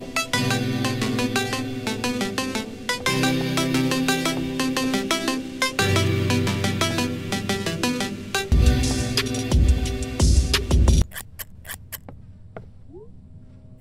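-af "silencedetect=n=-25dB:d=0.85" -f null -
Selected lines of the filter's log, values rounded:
silence_start: 12.57
silence_end: 13.80 | silence_duration: 1.24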